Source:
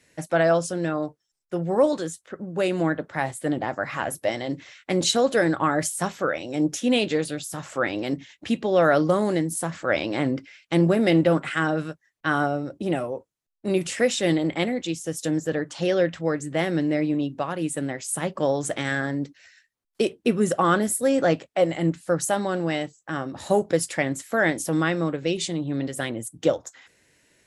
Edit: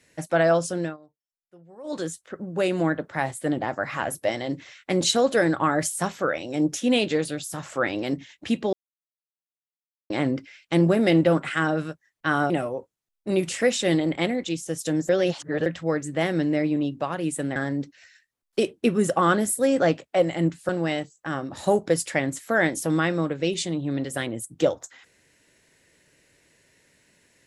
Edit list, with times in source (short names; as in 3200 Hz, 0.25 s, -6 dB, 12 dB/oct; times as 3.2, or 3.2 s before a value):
0.81–2 dip -24 dB, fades 0.16 s
8.73–10.1 mute
12.5–12.88 cut
15.47–16.04 reverse
17.94–18.98 cut
22.11–22.52 cut